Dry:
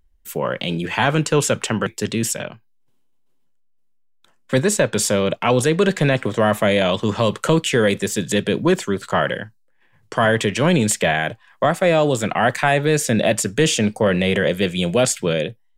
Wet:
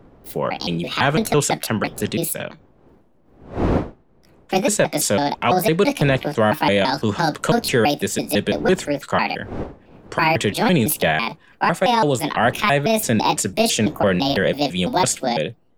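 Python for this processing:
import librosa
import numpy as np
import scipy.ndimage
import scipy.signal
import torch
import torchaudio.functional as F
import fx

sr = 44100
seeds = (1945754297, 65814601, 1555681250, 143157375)

y = fx.pitch_trill(x, sr, semitones=6.5, every_ms=167)
y = fx.dmg_wind(y, sr, seeds[0], corner_hz=420.0, level_db=-35.0)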